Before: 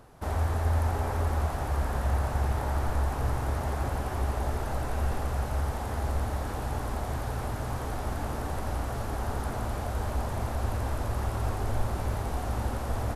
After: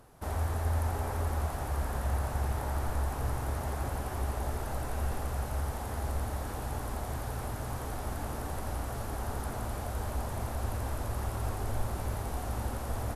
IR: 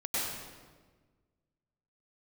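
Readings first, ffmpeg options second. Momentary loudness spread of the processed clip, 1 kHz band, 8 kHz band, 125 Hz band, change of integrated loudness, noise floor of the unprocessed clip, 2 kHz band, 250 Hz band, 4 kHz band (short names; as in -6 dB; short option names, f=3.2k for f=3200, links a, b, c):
4 LU, -4.0 dB, +0.5 dB, -4.0 dB, -4.0 dB, -34 dBFS, -4.0 dB, -4.0 dB, -3.0 dB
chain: -af "equalizer=f=12k:t=o:w=1.2:g=6.5,volume=-4dB"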